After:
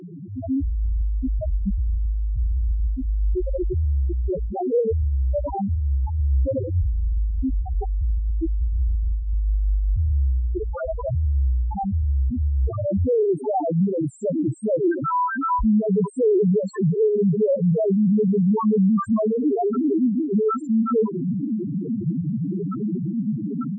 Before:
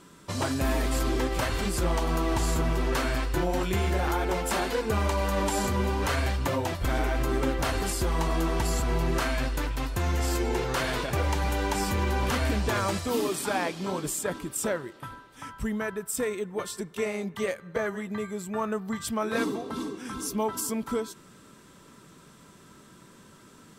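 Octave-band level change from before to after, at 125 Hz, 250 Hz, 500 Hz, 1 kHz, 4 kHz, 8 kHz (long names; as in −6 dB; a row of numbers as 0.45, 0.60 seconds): +8.0 dB, +9.0 dB, +6.5 dB, +1.5 dB, below −30 dB, below −20 dB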